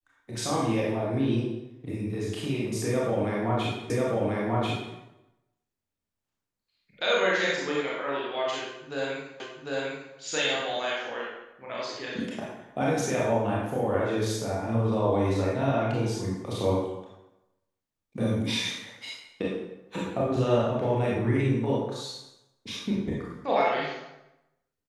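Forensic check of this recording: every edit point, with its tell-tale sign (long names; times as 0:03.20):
0:03.90: the same again, the last 1.04 s
0:09.40: the same again, the last 0.75 s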